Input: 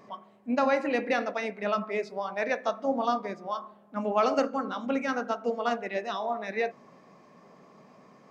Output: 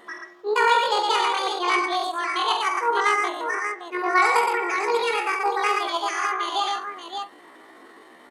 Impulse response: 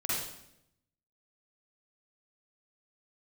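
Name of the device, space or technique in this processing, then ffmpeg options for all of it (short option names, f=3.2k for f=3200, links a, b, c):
chipmunk voice: -af "aecho=1:1:49|55|112|169|583:0.398|0.316|0.668|0.126|0.447,asetrate=76340,aresample=44100,atempo=0.577676,volume=4dB"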